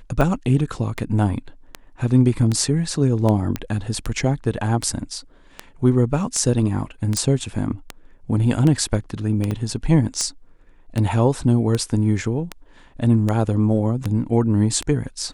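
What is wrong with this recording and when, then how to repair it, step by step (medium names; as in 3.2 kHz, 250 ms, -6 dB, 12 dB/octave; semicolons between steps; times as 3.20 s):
tick 78 rpm -10 dBFS
3.56 s: pop -10 dBFS
7.17 s: pop
9.51 s: dropout 3.5 ms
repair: de-click; interpolate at 9.51 s, 3.5 ms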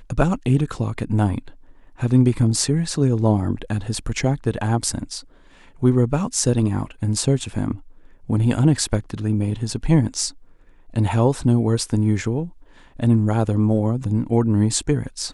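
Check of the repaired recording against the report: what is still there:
nothing left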